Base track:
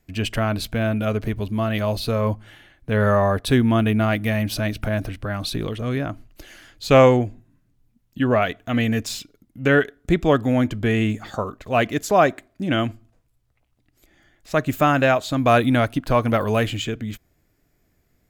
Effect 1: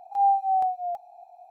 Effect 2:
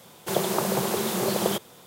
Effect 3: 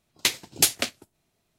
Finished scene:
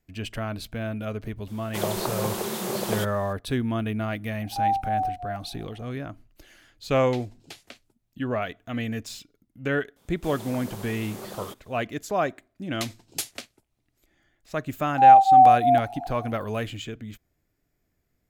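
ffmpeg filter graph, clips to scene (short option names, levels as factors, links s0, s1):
-filter_complex "[2:a]asplit=2[s0][s1];[1:a]asplit=2[s2][s3];[3:a]asplit=2[s4][s5];[0:a]volume=0.355[s6];[s4]acrossover=split=4400[s7][s8];[s8]acompressor=threshold=0.0178:ratio=4:attack=1:release=60[s9];[s7][s9]amix=inputs=2:normalize=0[s10];[s3]dynaudnorm=f=120:g=3:m=5.62[s11];[s0]atrim=end=1.86,asetpts=PTS-STARTPTS,volume=0.668,afade=t=in:d=0.004:c=hsin,afade=t=out:st=1.856:d=0.004:c=hsin,adelay=1470[s12];[s2]atrim=end=1.5,asetpts=PTS-STARTPTS,volume=0.708,afade=t=in:d=0.004:c=hsin,afade=t=out:st=1.496:d=0.004:c=hsin,adelay=194481S[s13];[s10]atrim=end=1.58,asetpts=PTS-STARTPTS,volume=0.141,afade=t=in:d=0.004:c=hsin,afade=t=out:st=1.576:d=0.004:c=hsin,adelay=6880[s14];[s1]atrim=end=1.86,asetpts=PTS-STARTPTS,volume=0.2,afade=t=in:d=0.004:c=hsin,afade=t=out:st=1.856:d=0.004:c=hsin,adelay=9960[s15];[s5]atrim=end=1.58,asetpts=PTS-STARTPTS,volume=0.282,afade=t=in:d=0.004:c=hsin,afade=t=out:st=1.576:d=0.004:c=hsin,adelay=12560[s16];[s11]atrim=end=1.5,asetpts=PTS-STARTPTS,volume=0.668,afade=t=in:d=0.004:c=hsin,afade=t=out:st=1.496:d=0.004:c=hsin,adelay=14830[s17];[s6][s12][s13][s14][s15][s16][s17]amix=inputs=7:normalize=0"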